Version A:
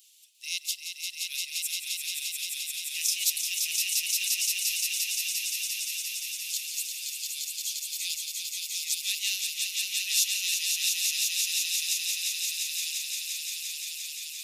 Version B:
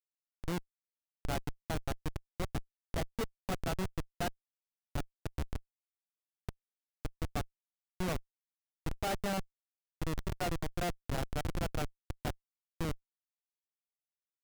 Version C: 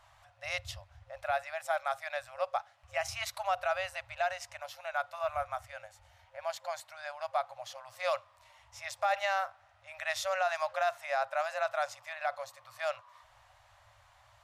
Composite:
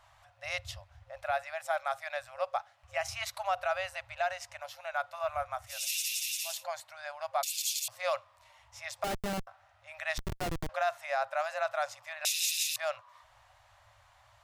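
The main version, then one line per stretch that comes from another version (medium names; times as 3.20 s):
C
5.78–6.53 s: from A, crossfade 0.24 s
7.43–7.88 s: from A
9.04–9.47 s: from B
10.18–10.69 s: from B
12.25–12.76 s: from A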